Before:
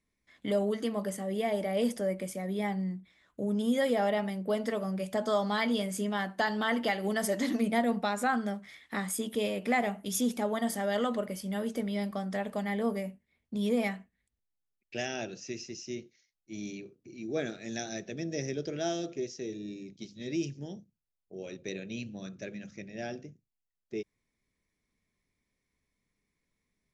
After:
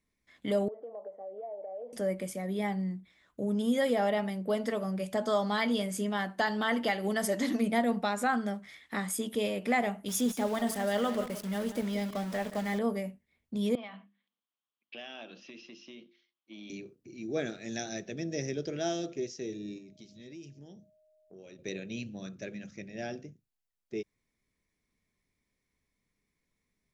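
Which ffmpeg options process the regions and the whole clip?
-filter_complex "[0:a]asettb=1/sr,asplit=3[s0][s1][s2];[s0]atrim=end=0.684[s3];[s1]atrim=start=0.68:end=1.93,asetpts=PTS-STARTPTS,afade=t=in:d=0.004:c=qsin,afade=t=out:st=1.246:d=0.004:c=qsin,asuperpass=centerf=610:order=4:qfactor=1.9,acompressor=threshold=0.0112:ratio=4:attack=3.2:release=140:knee=1:detection=peak[s4];[s2]atrim=start=1.926[s5];[s3][s4]acrossfade=d=0.004:c1=hsin:c2=qsin[s6];[s6][s5]acrossfade=d=0.004:c1=qsin:c2=hsin,asettb=1/sr,asplit=3[s7][s8][s9];[s7]atrim=end=10.084[s10];[s8]atrim=start=10.08:end=12.79,asetpts=PTS-STARTPTS,afade=t=in:d=0.004:c=qsin,afade=t=out:st=2.706:d=0.004:c=qsin,aeval=exprs='val(0)*gte(abs(val(0)),0.01)':c=same,aecho=1:1:175:0.237,atrim=end_sample=119511[s11];[s9]atrim=start=12.786[s12];[s10][s11]acrossfade=d=0.004:c1=hsin:c2=qsin[s13];[s13][s12]acrossfade=d=0.004:c1=qsin:c2=hsin,asettb=1/sr,asplit=3[s14][s15][s16];[s14]atrim=end=13.754[s17];[s15]atrim=start=13.75:end=16.7,asetpts=PTS-STARTPTS,afade=t=in:d=0.004:c=qsin,afade=t=out:st=2.946:d=0.004:c=qsin,bandreject=f=50:t=h:w=6,bandreject=f=100:t=h:w=6,bandreject=f=150:t=h:w=6,bandreject=f=200:t=h:w=6,bandreject=f=250:t=h:w=6,bandreject=f=300:t=h:w=6,bandreject=f=350:t=h:w=6,acompressor=threshold=0.01:ratio=5:attack=3.2:release=140:knee=1:detection=peak,highpass=f=210:w=0.5412,highpass=f=210:w=1.3066,equalizer=f=390:t=q:w=4:g=-9,equalizer=f=1100:t=q:w=4:g=9,equalizer=f=1900:t=q:w=4:g=-4,equalizer=f=3200:t=q:w=4:g=10,lowpass=f=3900:w=0.5412,lowpass=f=3900:w=1.3066[s18];[s16]atrim=start=16.696[s19];[s17][s18]acrossfade=d=0.004:c1=hsin:c2=qsin[s20];[s20][s19]acrossfade=d=0.004:c1=qsin:c2=hsin,asettb=1/sr,asplit=3[s21][s22][s23];[s21]atrim=end=19.784[s24];[s22]atrim=start=19.78:end=21.59,asetpts=PTS-STARTPTS,afade=t=in:d=0.004:c=qsin,afade=t=out:st=1.806:d=0.004:c=qsin,aeval=exprs='val(0)+0.000562*sin(2*PI*620*n/s)':c=same,acompressor=threshold=0.00282:ratio=2.5:attack=3.2:release=140:knee=1:detection=peak[s25];[s23]atrim=start=21.586[s26];[s24][s25]acrossfade=d=0.004:c1=hsin:c2=qsin[s27];[s27][s26]acrossfade=d=0.004:c1=qsin:c2=hsin"

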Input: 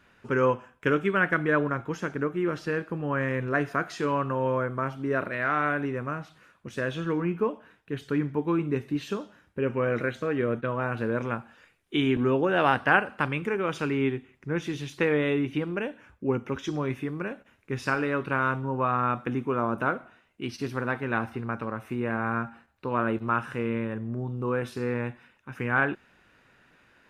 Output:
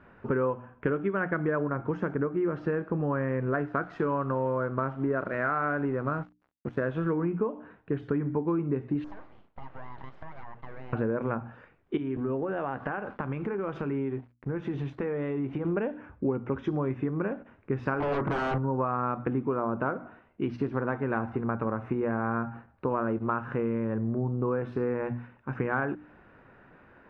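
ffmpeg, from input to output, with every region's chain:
-filter_complex "[0:a]asettb=1/sr,asplit=3[s0][s1][s2];[s0]atrim=end=3.514[s3];[s1]atrim=start=3.51:end=7.11,asetpts=PTS-STARTPTS,afade=t=in:d=0.004:c=qsin,afade=t=out:st=3.596:d=0.004:c=qsin,equalizer=f=1400:w=4.9:g=4,aeval=exprs='sgn(val(0))*max(abs(val(0))-0.00398,0)':c=same[s4];[s2]atrim=start=7.106[s5];[s3][s4]acrossfade=d=0.004:c1=hsin:c2=qsin[s6];[s6][s5]acrossfade=d=0.004:c1=qsin:c2=hsin,asettb=1/sr,asplit=3[s7][s8][s9];[s7]atrim=end=9.044[s10];[s8]atrim=start=9.04:end=10.93,asetpts=PTS-STARTPTS,afade=t=in:d=0.004:c=qsin,afade=t=out:st=1.886:d=0.004:c=qsin,highpass=600,lowpass=3900,acompressor=threshold=0.00562:ratio=5:attack=3.2:release=140:knee=1:detection=peak,aeval=exprs='abs(val(0))':c=same[s11];[s9]atrim=start=10.926[s12];[s10][s11]acrossfade=d=0.004:c1=hsin:c2=qsin[s13];[s13][s12]acrossfade=d=0.004:c1=qsin:c2=hsin,asettb=1/sr,asplit=3[s14][s15][s16];[s14]atrim=end=11.974[s17];[s15]atrim=start=11.97:end=15.65,asetpts=PTS-STARTPTS,afade=t=in:d=0.004:c=qsin,afade=t=out:st=3.676:d=0.004:c=qsin,aeval=exprs='sgn(val(0))*max(abs(val(0))-0.00266,0)':c=same,asplit=2[s18][s19];[s19]adelay=15,volume=0.2[s20];[s18][s20]amix=inputs=2:normalize=0,atrim=end_sample=162288,acompressor=threshold=0.0178:ratio=6:attack=3.2:release=140:knee=1:detection=peak[s21];[s16]atrim=start=15.646[s22];[s17][s21]acrossfade=d=0.004:c1=hsin:c2=qsin[s23];[s23][s22]acrossfade=d=0.004:c1=qsin:c2=hsin,asettb=1/sr,asplit=3[s24][s25][s26];[s24]atrim=end=18.004[s27];[s25]atrim=start=18:end=18.58,asetpts=PTS-STARTPTS,afade=t=in:d=0.004:c=qsin,afade=t=out:st=0.576:d=0.004:c=qsin,lowpass=f=2000:w=0.5412,lowpass=f=2000:w=1.3066,acontrast=59,aeval=exprs='0.0668*(abs(mod(val(0)/0.0668+3,4)-2)-1)':c=same[s28];[s26]atrim=start=18.576[s29];[s27][s28]acrossfade=d=0.004:c1=hsin:c2=qsin[s30];[s30][s29]acrossfade=d=0.004:c1=qsin:c2=hsin,lowpass=1200,bandreject=f=60:t=h:w=6,bandreject=f=120:t=h:w=6,bandreject=f=180:t=h:w=6,bandreject=f=240:t=h:w=6,bandreject=f=300:t=h:w=6,acompressor=threshold=0.02:ratio=6,volume=2.66"

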